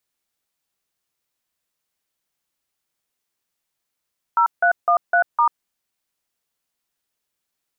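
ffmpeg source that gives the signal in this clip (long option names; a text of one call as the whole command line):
ffmpeg -f lavfi -i "aevalsrc='0.168*clip(min(mod(t,0.254),0.092-mod(t,0.254))/0.002,0,1)*(eq(floor(t/0.254),0)*(sin(2*PI*941*mod(t,0.254))+sin(2*PI*1336*mod(t,0.254)))+eq(floor(t/0.254),1)*(sin(2*PI*697*mod(t,0.254))+sin(2*PI*1477*mod(t,0.254)))+eq(floor(t/0.254),2)*(sin(2*PI*697*mod(t,0.254))+sin(2*PI*1209*mod(t,0.254)))+eq(floor(t/0.254),3)*(sin(2*PI*697*mod(t,0.254))+sin(2*PI*1477*mod(t,0.254)))+eq(floor(t/0.254),4)*(sin(2*PI*941*mod(t,0.254))+sin(2*PI*1209*mod(t,0.254))))':duration=1.27:sample_rate=44100" out.wav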